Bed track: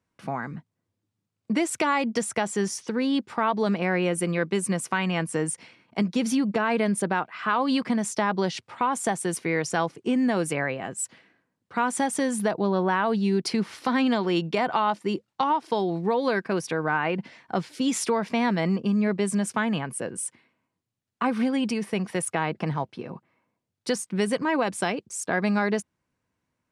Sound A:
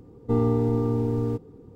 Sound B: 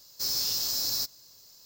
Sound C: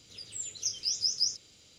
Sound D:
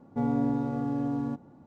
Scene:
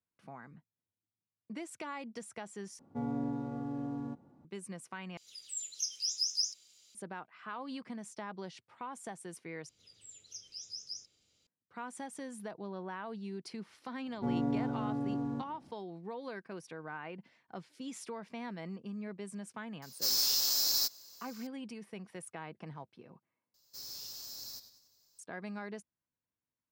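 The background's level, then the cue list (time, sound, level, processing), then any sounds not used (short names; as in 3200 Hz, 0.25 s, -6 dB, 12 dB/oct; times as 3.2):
bed track -18.5 dB
2.79 replace with D -8.5 dB + HPF 47 Hz
5.17 replace with C -14.5 dB + tilt +4.5 dB/oct
9.69 replace with C -15 dB
14.06 add D -5.5 dB
19.82 add B -0.5 dB + HPF 420 Hz 6 dB/oct
23.54 replace with B -16.5 dB + warbling echo 96 ms, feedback 49%, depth 91 cents, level -12 dB
not used: A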